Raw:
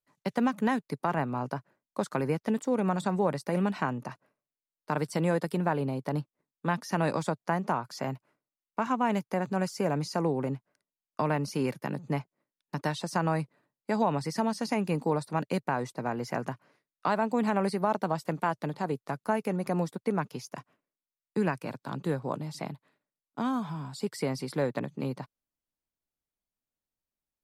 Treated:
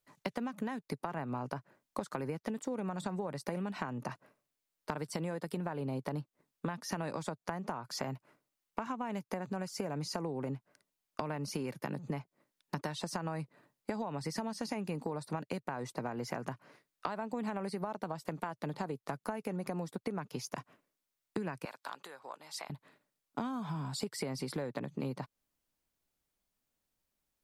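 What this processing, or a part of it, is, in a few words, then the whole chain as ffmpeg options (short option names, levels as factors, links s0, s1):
serial compression, leveller first: -filter_complex "[0:a]acompressor=threshold=0.0316:ratio=2.5,acompressor=threshold=0.00708:ratio=5,asettb=1/sr,asplit=3[s0][s1][s2];[s0]atrim=end=21.654[s3];[s1]atrim=start=21.65:end=22.7,asetpts=PTS-STARTPTS,afade=t=in:d=0.004:c=qsin,afade=t=out:st=1.046:d=0.004:c=qsin,highpass=890[s4];[s2]atrim=start=22.696[s5];[s3][s4]acrossfade=d=0.004:c1=hsin:c2=qsin[s6];[s6][s5]acrossfade=d=0.004:c1=qsin:c2=hsin,volume=2.37"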